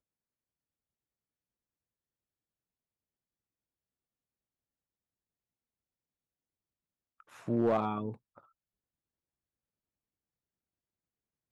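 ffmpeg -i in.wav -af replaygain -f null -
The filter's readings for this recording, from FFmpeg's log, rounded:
track_gain = +23.0 dB
track_peak = 0.060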